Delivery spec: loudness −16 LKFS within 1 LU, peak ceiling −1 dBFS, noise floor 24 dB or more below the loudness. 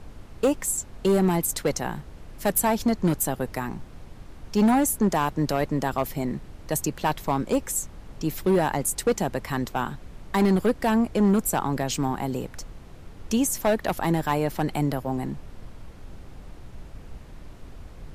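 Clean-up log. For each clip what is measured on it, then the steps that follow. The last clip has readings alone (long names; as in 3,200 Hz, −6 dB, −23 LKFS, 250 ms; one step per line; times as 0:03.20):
share of clipped samples 1.5%; peaks flattened at −15.0 dBFS; background noise floor −45 dBFS; target noise floor −49 dBFS; integrated loudness −25.0 LKFS; sample peak −15.0 dBFS; target loudness −16.0 LKFS
→ clipped peaks rebuilt −15 dBFS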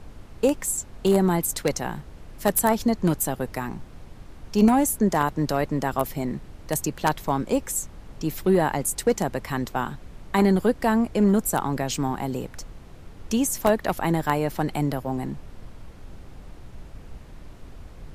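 share of clipped samples 0.0%; background noise floor −45 dBFS; target noise floor −49 dBFS
→ noise reduction from a noise print 6 dB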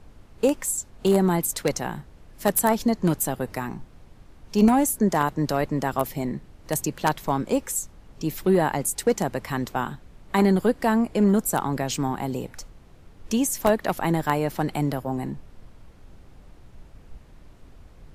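background noise floor −50 dBFS; integrated loudness −24.5 LKFS; sample peak −6.0 dBFS; target loudness −16.0 LKFS
→ level +8.5 dB
brickwall limiter −1 dBFS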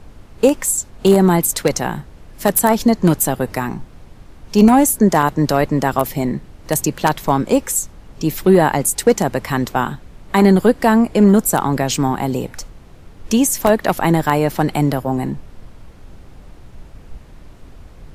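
integrated loudness −16.0 LKFS; sample peak −1.0 dBFS; background noise floor −42 dBFS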